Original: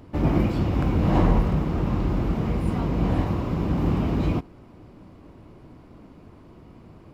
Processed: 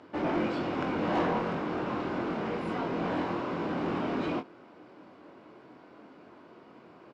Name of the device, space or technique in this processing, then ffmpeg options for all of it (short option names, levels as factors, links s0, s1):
intercom: -filter_complex "[0:a]highpass=350,lowpass=4800,equalizer=f=1500:t=o:w=0.23:g=6,asoftclip=type=tanh:threshold=0.0668,asplit=2[s0][s1];[s1]adelay=23,volume=0.447[s2];[s0][s2]amix=inputs=2:normalize=0"